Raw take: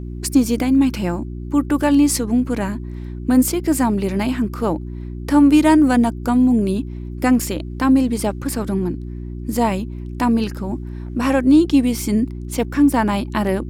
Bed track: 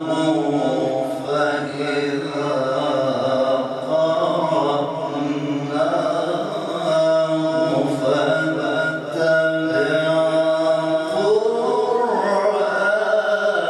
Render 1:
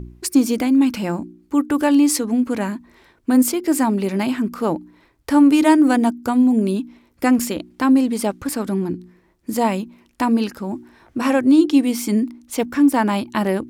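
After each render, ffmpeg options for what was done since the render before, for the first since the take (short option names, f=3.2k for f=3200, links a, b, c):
-af "bandreject=f=60:t=h:w=4,bandreject=f=120:t=h:w=4,bandreject=f=180:t=h:w=4,bandreject=f=240:t=h:w=4,bandreject=f=300:t=h:w=4,bandreject=f=360:t=h:w=4"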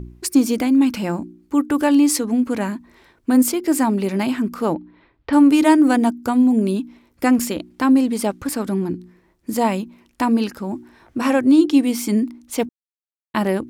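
-filter_complex "[0:a]asettb=1/sr,asplit=3[a][b][c];[a]atrim=end=4.744[d];[b]atrim=start=4.74:end=5.33,asetpts=PTS-STARTPTS,afade=t=in:d=0.004:c=qsin,afade=t=out:st=0.586:d=0.004:c=qsin,lowpass=f=3.8k:w=0.5412,lowpass=f=3.8k:w=1.3066[e];[c]atrim=start=5.326[f];[d][e]acrossfade=d=0.004:c1=hsin:c2=qsin[g];[g][f]acrossfade=d=0.004:c1=qsin:c2=hsin,asplit=3[h][i][j];[h]atrim=end=12.69,asetpts=PTS-STARTPTS,afade=t=out:st=12.686:d=0.004:c=hsin[k];[i]atrim=start=12.69:end=13.34,asetpts=PTS-STARTPTS,volume=0[l];[j]atrim=start=13.34,asetpts=PTS-STARTPTS,afade=t=in:d=0.004:c=hsin[m];[k][l][m]concat=n=3:v=0:a=1"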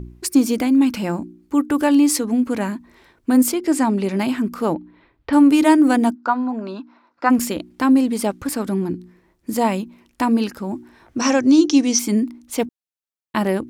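-filter_complex "[0:a]asettb=1/sr,asplit=3[a][b][c];[a]atrim=end=3.544[d];[b]atrim=start=3.54:end=4.17,asetpts=PTS-STARTPTS,afade=t=in:d=0.004:c=qsin,afade=t=out:st=0.626:d=0.004:c=qsin,lowpass=9.4k[e];[c]atrim=start=4.166[f];[d][e]acrossfade=d=0.004:c1=hsin:c2=qsin[g];[g][f]acrossfade=d=0.004:c1=qsin:c2=hsin,asplit=3[h][i][j];[h]afade=t=out:st=6.14:d=0.02[k];[i]highpass=390,equalizer=f=420:t=q:w=4:g=-9,equalizer=f=680:t=q:w=4:g=3,equalizer=f=990:t=q:w=4:g=8,equalizer=f=1.4k:t=q:w=4:g=9,equalizer=f=2.2k:t=q:w=4:g=-6,equalizer=f=3.2k:t=q:w=4:g=-10,lowpass=f=4.5k:w=0.5412,lowpass=f=4.5k:w=1.3066,afade=t=in:st=6.14:d=0.02,afade=t=out:st=7.29:d=0.02[l];[j]afade=t=in:st=7.29:d=0.02[m];[k][l][m]amix=inputs=3:normalize=0,asettb=1/sr,asplit=3[n][o][p];[n]atrim=end=11.184[q];[o]atrim=start=11.18:end=11.99,asetpts=PTS-STARTPTS,afade=t=in:d=0.004:c=qsin,afade=t=out:st=0.806:d=0.004:c=qsin,lowpass=f=6k:t=q:w=14[r];[p]atrim=start=11.986[s];[q][r]acrossfade=d=0.004:c1=hsin:c2=qsin[t];[t][s]acrossfade=d=0.004:c1=qsin:c2=hsin"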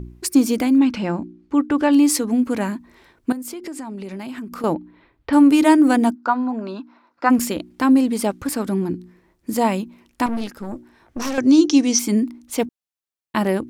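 -filter_complex "[0:a]asettb=1/sr,asplit=3[a][b][c];[a]atrim=end=0.784[d];[b]atrim=start=0.78:end=1.93,asetpts=PTS-STARTPTS,afade=t=in:d=0.004:c=qsin,afade=t=out:st=1.146:d=0.004:c=qsin,lowpass=4.6k[e];[c]atrim=start=1.926[f];[d][e]acrossfade=d=0.004:c1=hsin:c2=qsin[g];[g][f]acrossfade=d=0.004:c1=qsin:c2=hsin,asettb=1/sr,asplit=3[h][i][j];[h]atrim=end=3.324[k];[i]atrim=start=3.32:end=4.64,asetpts=PTS-STARTPTS,afade=t=in:d=0.004:c=qsin,afade=t=out:st=1.316:d=0.004:c=qsin,acompressor=threshold=-28dB:ratio=10:attack=3.2:release=140:knee=1:detection=peak[l];[j]atrim=start=4.636[m];[k][l]acrossfade=d=0.004:c1=hsin:c2=qsin[n];[n][m]acrossfade=d=0.004:c1=qsin:c2=hsin,asettb=1/sr,asplit=3[o][p][q];[o]atrim=end=10.264[r];[p]atrim=start=10.26:end=11.38,asetpts=PTS-STARTPTS,afade=t=in:d=0.004:c=qsin,afade=t=out:st=1.116:d=0.004:c=qsin,aeval=exprs='(tanh(12.6*val(0)+0.7)-tanh(0.7))/12.6':c=same[s];[q]atrim=start=11.376[t];[r][s]acrossfade=d=0.004:c1=hsin:c2=qsin[u];[u][t]acrossfade=d=0.004:c1=qsin:c2=hsin"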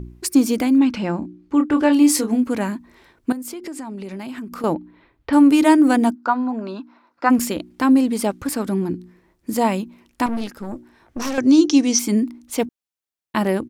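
-filter_complex "[0:a]asplit=3[a][b][c];[a]afade=t=out:st=1.21:d=0.02[d];[b]asplit=2[e][f];[f]adelay=27,volume=-6.5dB[g];[e][g]amix=inputs=2:normalize=0,afade=t=in:st=1.21:d=0.02,afade=t=out:st=2.36:d=0.02[h];[c]afade=t=in:st=2.36:d=0.02[i];[d][h][i]amix=inputs=3:normalize=0"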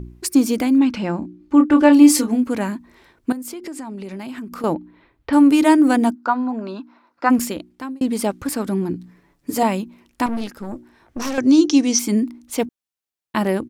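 -filter_complex "[0:a]asettb=1/sr,asplit=3[a][b][c];[a]atrim=end=1.404[d];[b]atrim=start=1.4:end=2.28,asetpts=PTS-STARTPTS,afade=t=in:d=0.004:c=qsin,afade=t=out:st=0.876:d=0.004:c=qsin,aecho=1:1:3.4:0.65,atrim=end_sample=38808[e];[c]atrim=start=2.276[f];[d][e]acrossfade=d=0.004:c1=hsin:c2=qsin[g];[g][f]acrossfade=d=0.004:c1=qsin:c2=hsin,asettb=1/sr,asplit=3[h][i][j];[h]atrim=end=8.954[k];[i]atrim=start=8.95:end=9.63,asetpts=PTS-STARTPTS,afade=t=in:d=0.004:c=qsin,afade=t=out:st=0.676:d=0.004:c=qsin,aecho=1:1:7:0.79,atrim=end_sample=29988[l];[j]atrim=start=9.626[m];[k][l]acrossfade=d=0.004:c1=hsin:c2=qsin[n];[n][m]acrossfade=d=0.004:c1=qsin:c2=hsin,asplit=2[o][p];[o]atrim=end=8.01,asetpts=PTS-STARTPTS,afade=t=out:st=7.37:d=0.64[q];[p]atrim=start=8.01,asetpts=PTS-STARTPTS,afade=t=in:d=0.004:c=hsin[r];[q][r]concat=n=2:v=0:a=1"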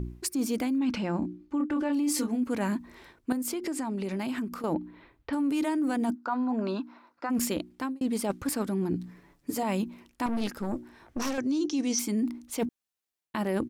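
-af "alimiter=limit=-11.5dB:level=0:latency=1:release=32,areverse,acompressor=threshold=-26dB:ratio=6,areverse"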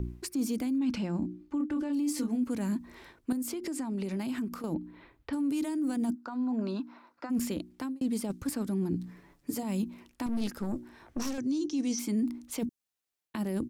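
-filter_complex "[0:a]acrossover=split=320|4200[a][b][c];[b]acompressor=threshold=-41dB:ratio=6[d];[c]alimiter=level_in=5.5dB:limit=-24dB:level=0:latency=1:release=170,volume=-5.5dB[e];[a][d][e]amix=inputs=3:normalize=0"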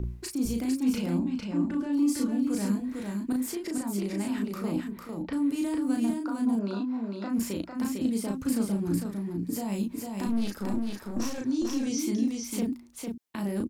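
-filter_complex "[0:a]asplit=2[a][b];[b]adelay=35,volume=-3dB[c];[a][c]amix=inputs=2:normalize=0,asplit=2[d][e];[e]aecho=0:1:452:0.631[f];[d][f]amix=inputs=2:normalize=0"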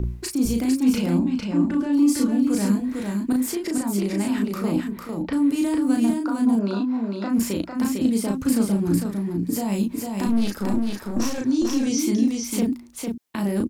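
-af "volume=7dB"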